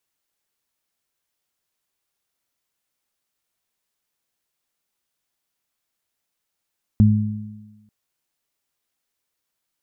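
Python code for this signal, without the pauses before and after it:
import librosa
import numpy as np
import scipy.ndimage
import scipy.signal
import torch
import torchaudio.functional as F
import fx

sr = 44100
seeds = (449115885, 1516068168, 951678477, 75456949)

y = fx.additive(sr, length_s=0.89, hz=106.0, level_db=-10, upper_db=(-2.0,), decay_s=1.1, upper_decays_s=(1.24,))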